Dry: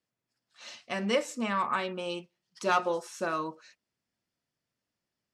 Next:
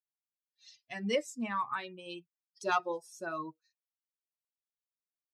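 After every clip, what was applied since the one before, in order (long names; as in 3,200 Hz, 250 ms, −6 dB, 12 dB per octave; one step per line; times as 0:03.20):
spectral dynamics exaggerated over time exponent 2
level −1.5 dB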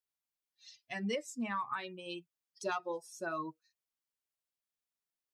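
downward compressor 12 to 1, threshold −33 dBFS, peak gain reduction 10 dB
level +1 dB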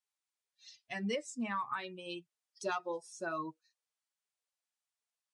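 Ogg Vorbis 48 kbit/s 22,050 Hz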